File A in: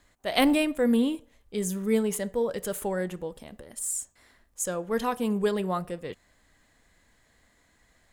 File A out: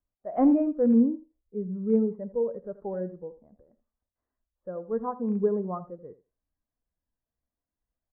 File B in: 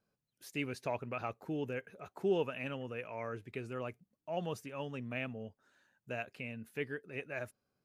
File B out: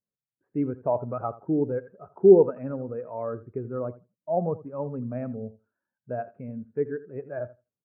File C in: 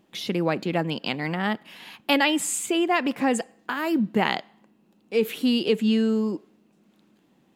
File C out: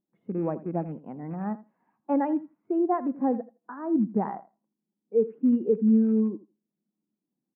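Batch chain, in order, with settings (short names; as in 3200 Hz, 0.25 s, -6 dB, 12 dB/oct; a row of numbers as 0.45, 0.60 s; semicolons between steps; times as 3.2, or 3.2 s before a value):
rattling part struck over -28 dBFS, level -17 dBFS; LPF 1400 Hz 24 dB/oct; on a send: feedback echo 82 ms, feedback 23%, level -12 dB; on the sum: spectral expander 1.5:1; match loudness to -27 LUFS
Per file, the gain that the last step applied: -0.5, +16.5, -2.5 dB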